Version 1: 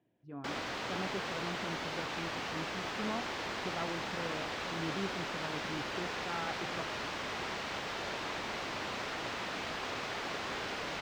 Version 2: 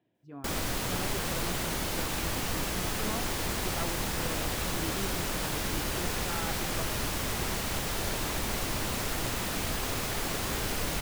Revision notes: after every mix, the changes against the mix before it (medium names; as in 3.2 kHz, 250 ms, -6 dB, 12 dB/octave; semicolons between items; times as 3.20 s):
background: remove high-pass 590 Hz 6 dB/octave; master: remove distance through air 180 m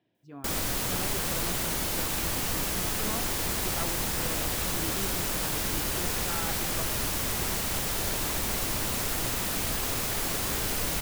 speech: add treble shelf 3.4 kHz +10.5 dB; background: add treble shelf 6.7 kHz +7.5 dB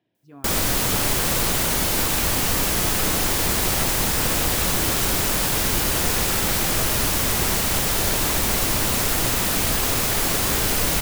background +8.5 dB